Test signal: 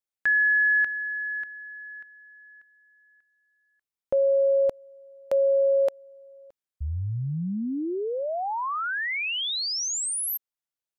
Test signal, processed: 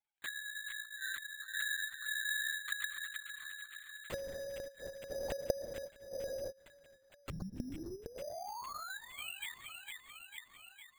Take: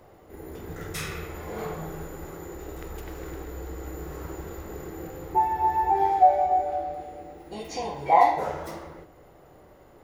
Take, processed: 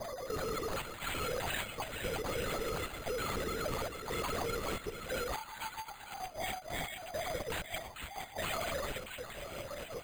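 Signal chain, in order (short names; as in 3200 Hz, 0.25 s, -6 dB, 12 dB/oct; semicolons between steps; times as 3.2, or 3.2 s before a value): sine-wave speech; reverb removal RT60 1.6 s; compressor 8:1, threshold -36 dBFS; flipped gate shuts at -37 dBFS, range -29 dB; sine folder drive 18 dB, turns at -35.5 dBFS; chopper 0.98 Hz, depth 65%, duty 80%; thin delay 0.455 s, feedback 64%, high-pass 1700 Hz, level -4 dB; LPC vocoder at 8 kHz whisper; careless resampling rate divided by 8×, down none, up hold; gain +2 dB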